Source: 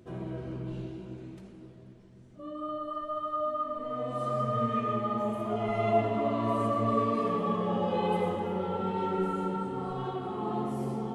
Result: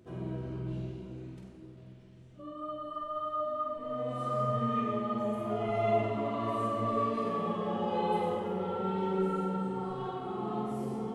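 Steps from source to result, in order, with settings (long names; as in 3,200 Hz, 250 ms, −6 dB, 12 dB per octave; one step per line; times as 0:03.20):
0:01.77–0:02.42: parametric band 2,900 Hz +6.5 dB 1.1 octaves
flutter between parallel walls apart 8.1 metres, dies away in 0.47 s
level −3.5 dB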